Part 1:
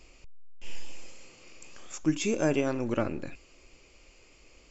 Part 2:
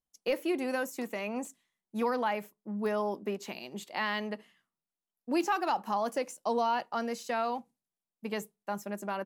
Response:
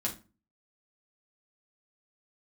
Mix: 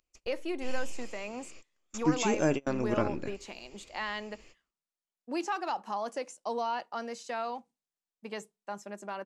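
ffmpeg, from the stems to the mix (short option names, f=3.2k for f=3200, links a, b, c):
-filter_complex "[0:a]volume=-0.5dB[a];[1:a]lowpass=f=8.8k:w=0.5412,lowpass=f=8.8k:w=1.3066,bass=f=250:g=-6,treble=f=4k:g=2,acontrast=87,volume=-10.5dB,asplit=2[b][c];[c]apad=whole_len=207566[d];[a][d]sidechaingate=range=-33dB:threshold=-59dB:ratio=16:detection=peak[e];[e][b]amix=inputs=2:normalize=0"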